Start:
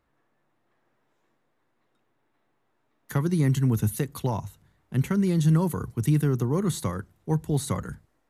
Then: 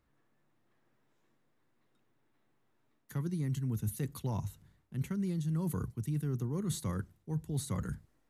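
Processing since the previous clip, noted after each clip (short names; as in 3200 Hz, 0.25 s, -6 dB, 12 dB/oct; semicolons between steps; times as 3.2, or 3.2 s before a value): EQ curve 190 Hz 0 dB, 710 Hz -7 dB, 5000 Hz -2 dB; reverse; compressor 6:1, threshold -32 dBFS, peak gain reduction 14.5 dB; reverse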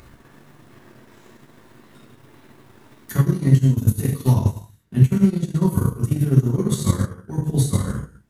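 non-linear reverb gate 0.32 s falling, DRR -7.5 dB; transient shaper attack +9 dB, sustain -10 dB; upward compressor, threshold -37 dBFS; gain +4 dB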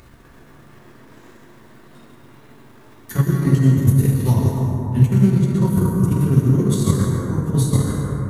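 plate-style reverb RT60 3.1 s, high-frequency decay 0.3×, pre-delay 0.11 s, DRR 0.5 dB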